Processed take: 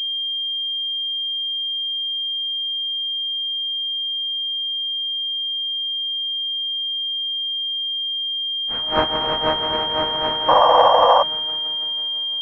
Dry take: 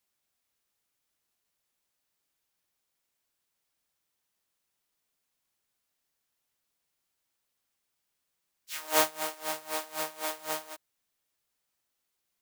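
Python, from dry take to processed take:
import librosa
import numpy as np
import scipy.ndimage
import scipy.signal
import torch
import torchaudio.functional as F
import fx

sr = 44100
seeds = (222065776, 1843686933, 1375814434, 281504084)

y = fx.echo_heads(x, sr, ms=165, heads='all three', feedback_pct=53, wet_db=-7.5)
y = fx.spec_paint(y, sr, seeds[0], shape='noise', start_s=10.48, length_s=0.75, low_hz=480.0, high_hz=1200.0, level_db=-20.0)
y = fx.pwm(y, sr, carrier_hz=3200.0)
y = y * 10.0 ** (7.5 / 20.0)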